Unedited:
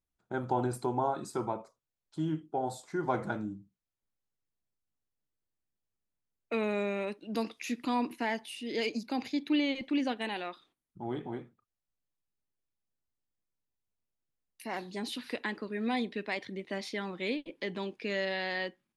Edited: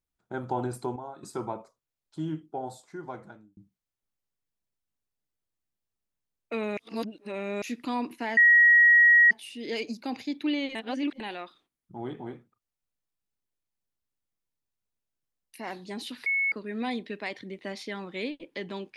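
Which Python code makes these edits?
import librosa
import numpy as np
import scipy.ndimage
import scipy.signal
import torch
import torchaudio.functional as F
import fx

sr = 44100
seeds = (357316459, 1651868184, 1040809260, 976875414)

y = fx.edit(x, sr, fx.clip_gain(start_s=0.96, length_s=0.27, db=-10.5),
    fx.fade_out_span(start_s=2.33, length_s=1.24),
    fx.reverse_span(start_s=6.77, length_s=0.85),
    fx.insert_tone(at_s=8.37, length_s=0.94, hz=1900.0, db=-14.0),
    fx.reverse_span(start_s=9.81, length_s=0.45),
    fx.bleep(start_s=15.32, length_s=0.26, hz=2200.0, db=-23.0), tone=tone)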